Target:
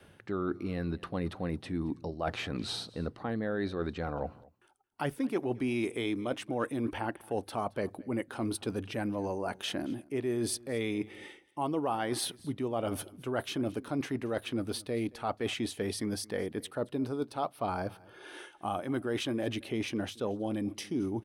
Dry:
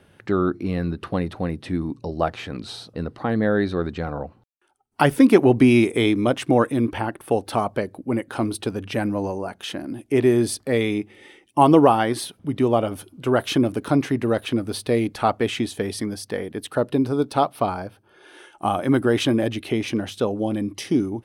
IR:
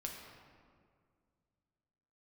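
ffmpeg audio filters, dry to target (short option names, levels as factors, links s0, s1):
-af "adynamicequalizer=threshold=0.0251:dfrequency=140:dqfactor=0.72:tfrequency=140:tqfactor=0.72:attack=5:release=100:ratio=0.375:range=2.5:mode=cutabove:tftype=bell,areverse,acompressor=threshold=0.0282:ratio=5,areverse,aecho=1:1:223:0.0708"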